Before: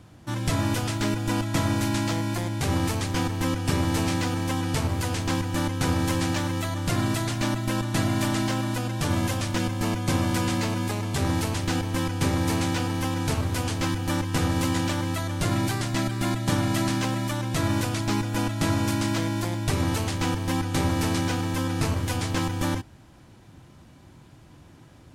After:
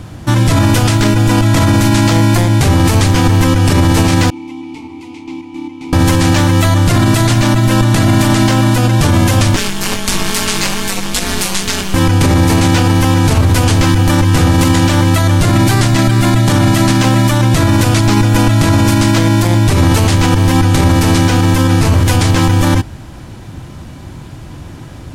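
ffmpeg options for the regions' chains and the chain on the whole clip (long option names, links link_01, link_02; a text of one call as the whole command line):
ffmpeg -i in.wav -filter_complex "[0:a]asettb=1/sr,asplit=3[link_01][link_02][link_03];[link_01]atrim=end=4.304[link_04];[link_02]atrim=start=4.3:end=5.93,asetpts=PTS-STARTPTS,afade=type=in:duration=0.004:curve=qsin,afade=type=out:start_time=1.626:duration=0.004:curve=qsin,equalizer=frequency=120:width=0.54:gain=-14,acrossover=split=400|3000[link_05][link_06][link_07];[link_06]acompressor=threshold=-51dB:ratio=2:attack=3.2:release=140:knee=2.83:detection=peak[link_08];[link_05][link_08][link_07]amix=inputs=3:normalize=0,asplit=3[link_09][link_10][link_11];[link_09]bandpass=frequency=300:width_type=q:width=8,volume=0dB[link_12];[link_10]bandpass=frequency=870:width_type=q:width=8,volume=-6dB[link_13];[link_11]bandpass=frequency=2240:width_type=q:width=8,volume=-9dB[link_14];[link_12][link_13][link_14]amix=inputs=3:normalize=0[link_15];[link_03]atrim=start=5.926[link_16];[link_04][link_15]acrossfade=duration=0.004:curve1=hsin:curve2=qsin[link_17];[link_17][link_16]acrossfade=duration=0.004:curve1=qsin:curve2=hsin,asettb=1/sr,asplit=3[link_18][link_19][link_20];[link_18]atrim=end=9.564[link_21];[link_19]atrim=start=9.56:end=11.94,asetpts=PTS-STARTPTS,afade=type=in:duration=0.004:curve=qsin,afade=type=out:start_time=2.376:duration=0.004:curve=qsin,flanger=delay=17.5:depth=2.8:speed=2.3,aeval=exprs='val(0)*sin(2*PI*95*n/s)':channel_layout=same,tiltshelf=frequency=1300:gain=-8[link_22];[link_20]atrim=start=11.936[link_23];[link_21][link_22]acrossfade=duration=0.004:curve1=hsin:curve2=qsin[link_24];[link_24][link_23]acrossfade=duration=0.004:curve1=qsin:curve2=hsin,lowshelf=frequency=82:gain=8,alimiter=level_in=19dB:limit=-1dB:release=50:level=0:latency=1,volume=-1dB" out.wav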